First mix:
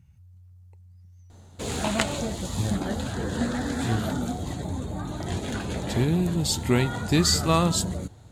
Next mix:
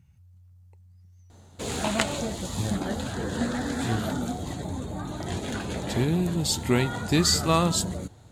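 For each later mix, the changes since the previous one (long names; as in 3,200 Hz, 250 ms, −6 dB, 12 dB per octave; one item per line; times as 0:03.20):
master: add low-shelf EQ 120 Hz −4.5 dB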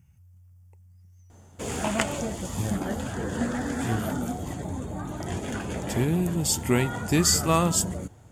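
speech: add high-shelf EQ 6,300 Hz +7 dB
master: add parametric band 4,000 Hz −15 dB 0.26 octaves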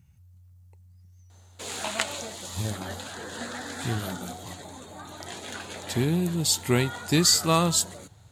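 background: add high-pass filter 990 Hz 6 dB per octave
master: add parametric band 4,000 Hz +15 dB 0.26 octaves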